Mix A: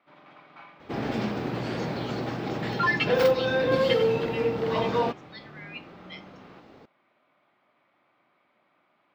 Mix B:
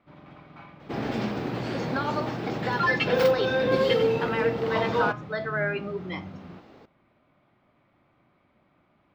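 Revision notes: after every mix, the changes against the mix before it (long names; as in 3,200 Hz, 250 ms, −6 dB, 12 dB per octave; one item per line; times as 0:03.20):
speech: remove Butterworth high-pass 2,300 Hz
first sound: remove meter weighting curve A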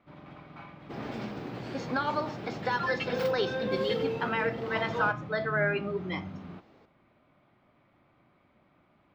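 second sound −8.5 dB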